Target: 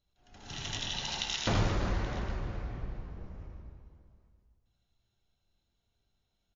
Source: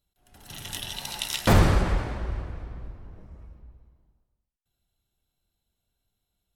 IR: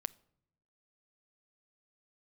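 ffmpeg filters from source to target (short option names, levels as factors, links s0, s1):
-filter_complex "[0:a]acompressor=threshold=0.0251:ratio=2.5,aecho=1:1:61|79|106|167|356|828:0.126|0.631|0.422|0.211|0.237|0.119[s0];[1:a]atrim=start_sample=2205,atrim=end_sample=3528,asetrate=35280,aresample=44100[s1];[s0][s1]afir=irnorm=-1:irlink=0" -ar 16000 -c:a libmp3lame -b:a 40k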